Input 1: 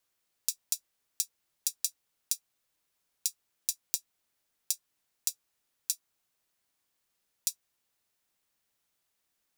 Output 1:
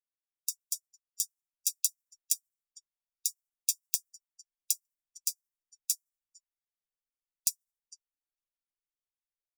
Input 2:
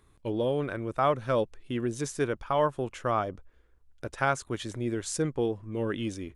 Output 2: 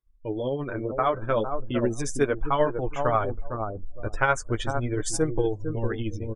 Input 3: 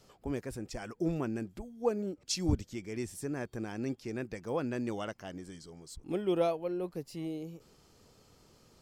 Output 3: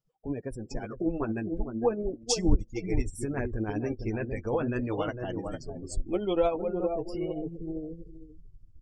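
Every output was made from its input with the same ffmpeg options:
-filter_complex "[0:a]dynaudnorm=framelen=330:gausssize=7:maxgain=6dB,bandreject=frequency=4100:width=8.3,asubboost=boost=10:cutoff=53,asplit=2[link_01][link_02];[link_02]adelay=455,lowpass=frequency=940:poles=1,volume=-6dB,asplit=2[link_03][link_04];[link_04]adelay=455,lowpass=frequency=940:poles=1,volume=0.2,asplit=2[link_05][link_06];[link_06]adelay=455,lowpass=frequency=940:poles=1,volume=0.2[link_07];[link_01][link_03][link_05][link_07]amix=inputs=4:normalize=0,tremolo=f=13:d=0.43,flanger=delay=6.2:depth=3.7:regen=-19:speed=0.38:shape=sinusoidal,asplit=2[link_08][link_09];[link_09]acompressor=threshold=-39dB:ratio=6,volume=2dB[link_10];[link_08][link_10]amix=inputs=2:normalize=0,afftdn=noise_reduction=32:noise_floor=-43,volume=1.5dB"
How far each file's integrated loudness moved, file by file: +1.5, +2.5, +4.5 LU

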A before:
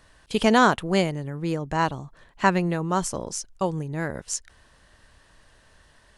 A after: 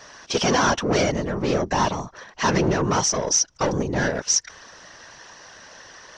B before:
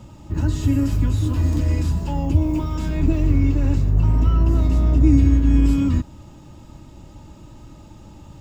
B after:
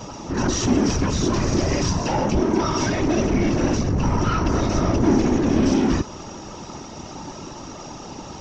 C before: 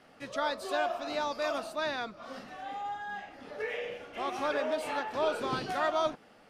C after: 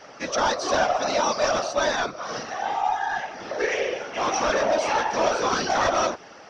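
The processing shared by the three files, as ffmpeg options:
-filter_complex "[0:a]asplit=2[link_01][link_02];[link_02]highpass=frequency=720:poles=1,volume=32dB,asoftclip=type=tanh:threshold=-3dB[link_03];[link_01][link_03]amix=inputs=2:normalize=0,lowpass=frequency=1300:poles=1,volume=-6dB,afftfilt=real='hypot(re,im)*cos(2*PI*random(0))':imag='hypot(re,im)*sin(2*PI*random(1))':win_size=512:overlap=0.75,lowpass=frequency=5800:width_type=q:width=12,volume=-2dB"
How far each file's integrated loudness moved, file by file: +3.0, −1.5, +9.5 LU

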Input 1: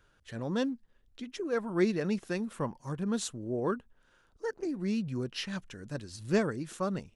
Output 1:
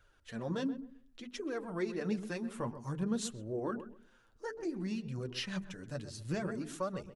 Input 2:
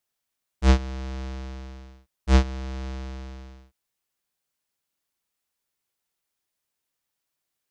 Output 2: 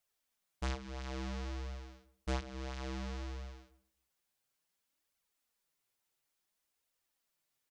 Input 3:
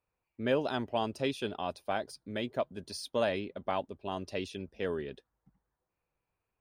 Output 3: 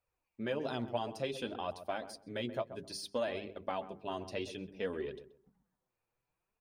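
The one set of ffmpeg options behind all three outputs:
-filter_complex "[0:a]bandreject=frequency=50:width_type=h:width=6,bandreject=frequency=100:width_type=h:width=6,bandreject=frequency=150:width_type=h:width=6,bandreject=frequency=200:width_type=h:width=6,bandreject=frequency=250:width_type=h:width=6,bandreject=frequency=300:width_type=h:width=6,bandreject=frequency=350:width_type=h:width=6,bandreject=frequency=400:width_type=h:width=6,bandreject=frequency=450:width_type=h:width=6,acompressor=threshold=-31dB:ratio=4,flanger=delay=1.3:depth=7.9:regen=25:speed=0.58:shape=triangular,asplit=2[link_01][link_02];[link_02]adelay=130,lowpass=frequency=1100:poles=1,volume=-11dB,asplit=2[link_03][link_04];[link_04]adelay=130,lowpass=frequency=1100:poles=1,volume=0.25,asplit=2[link_05][link_06];[link_06]adelay=130,lowpass=frequency=1100:poles=1,volume=0.25[link_07];[link_03][link_05][link_07]amix=inputs=3:normalize=0[link_08];[link_01][link_08]amix=inputs=2:normalize=0,volume=2dB"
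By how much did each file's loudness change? −5.0, −15.5, −4.5 LU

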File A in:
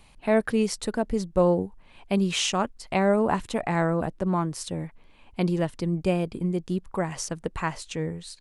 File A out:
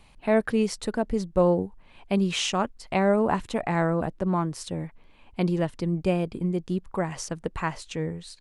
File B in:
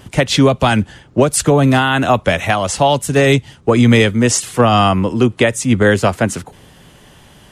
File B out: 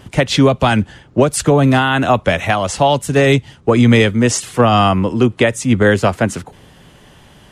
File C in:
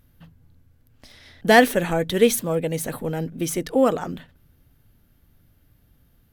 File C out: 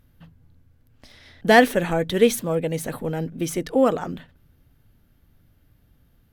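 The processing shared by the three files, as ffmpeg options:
-af "highshelf=frequency=6300:gain=-5.5"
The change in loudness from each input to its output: 0.0, 0.0, −0.5 LU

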